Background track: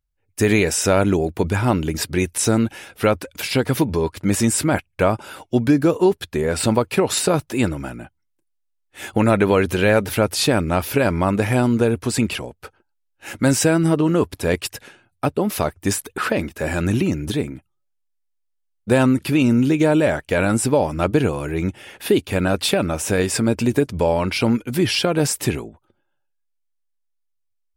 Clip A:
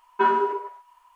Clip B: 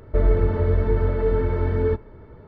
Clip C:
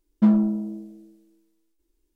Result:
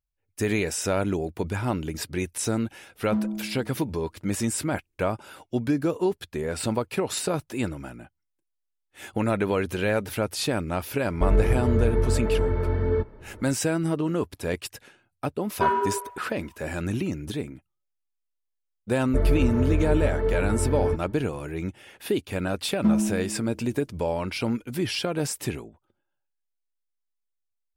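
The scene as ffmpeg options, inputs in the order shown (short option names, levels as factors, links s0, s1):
-filter_complex "[3:a]asplit=2[s0][s1];[2:a]asplit=2[s2][s3];[0:a]volume=0.376[s4];[s0]atrim=end=2.15,asetpts=PTS-STARTPTS,volume=0.335,afade=t=in:d=0.004:c=hsin,afade=t=out:st=2.146:d=0.004:c=hsin,adelay=2900[s5];[s2]atrim=end=2.47,asetpts=PTS-STARTPTS,volume=0.75,afade=t=in:d=0.004:c=hsin,afade=t=out:st=2.466:d=0.004:c=hsin,adelay=11070[s6];[1:a]atrim=end=1.15,asetpts=PTS-STARTPTS,volume=0.75,afade=t=in:d=0.004:c=hsin,afade=t=out:st=1.146:d=0.004:c=hsin,adelay=15410[s7];[s3]atrim=end=2.47,asetpts=PTS-STARTPTS,volume=0.668,afade=t=in:d=0.004:c=hsin,afade=t=out:st=2.466:d=0.004:c=hsin,adelay=19000[s8];[s1]atrim=end=2.15,asetpts=PTS-STARTPTS,volume=0.631,afade=t=in:d=0.004:c=hsin,afade=t=out:st=2.146:d=0.004:c=hsin,adelay=22620[s9];[s4][s5][s6][s7][s8][s9]amix=inputs=6:normalize=0"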